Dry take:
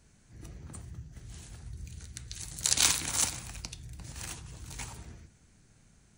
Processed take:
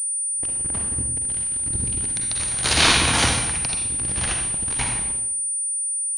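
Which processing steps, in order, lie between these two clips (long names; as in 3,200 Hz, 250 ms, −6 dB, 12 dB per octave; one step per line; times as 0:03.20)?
mains-hum notches 50/100/150 Hz
leveller curve on the samples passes 5
convolution reverb RT60 0.80 s, pre-delay 39 ms, DRR 2 dB
switching amplifier with a slow clock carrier 9,300 Hz
level −1.5 dB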